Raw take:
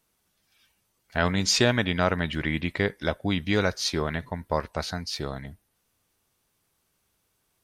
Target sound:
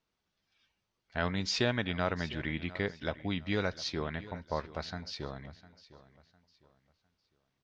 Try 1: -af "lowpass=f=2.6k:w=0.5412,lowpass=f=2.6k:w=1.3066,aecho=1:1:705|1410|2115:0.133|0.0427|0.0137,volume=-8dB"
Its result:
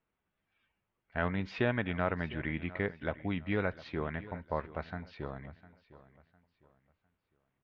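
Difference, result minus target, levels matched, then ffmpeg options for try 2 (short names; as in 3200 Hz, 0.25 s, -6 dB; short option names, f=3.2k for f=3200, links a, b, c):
4000 Hz band -11.5 dB
-af "lowpass=f=5.5k:w=0.5412,lowpass=f=5.5k:w=1.3066,aecho=1:1:705|1410|2115:0.133|0.0427|0.0137,volume=-8dB"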